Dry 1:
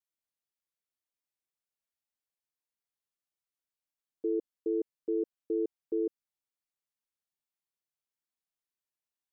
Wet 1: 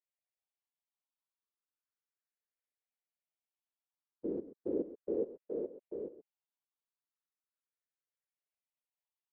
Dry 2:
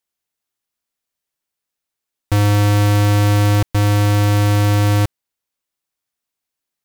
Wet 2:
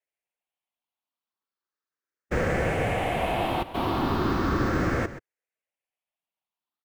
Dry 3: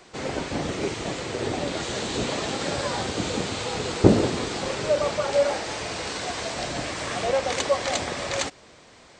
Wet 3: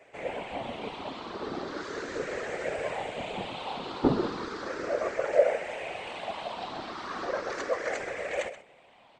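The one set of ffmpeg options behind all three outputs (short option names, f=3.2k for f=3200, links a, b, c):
-filter_complex "[0:a]afftfilt=real='re*pow(10,11/40*sin(2*PI*(0.51*log(max(b,1)*sr/1024/100)/log(2)-(0.36)*(pts-256)/sr)))':imag='im*pow(10,11/40*sin(2*PI*(0.51*log(max(b,1)*sr/1024/100)/log(2)-(0.36)*(pts-256)/sr)))':win_size=1024:overlap=0.75,acrossover=split=300 3000:gain=0.251 1 0.178[a][b][c];[a][b][c]amix=inputs=3:normalize=0,asplit=2[d][e];[e]aecho=0:1:129:0.2[f];[d][f]amix=inputs=2:normalize=0,afftfilt=real='hypot(re,im)*cos(2*PI*random(0))':imag='hypot(re,im)*sin(2*PI*random(1))':win_size=512:overlap=0.75"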